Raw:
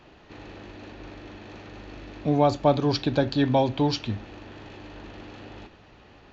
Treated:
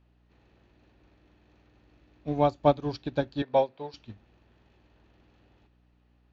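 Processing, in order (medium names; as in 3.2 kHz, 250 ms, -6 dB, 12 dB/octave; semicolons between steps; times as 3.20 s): hum 60 Hz, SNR 15 dB; 3.42–3.94 s: cabinet simulation 220–5200 Hz, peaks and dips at 290 Hz -10 dB, 500 Hz +6 dB, 3.1 kHz -6 dB; upward expansion 2.5:1, over -30 dBFS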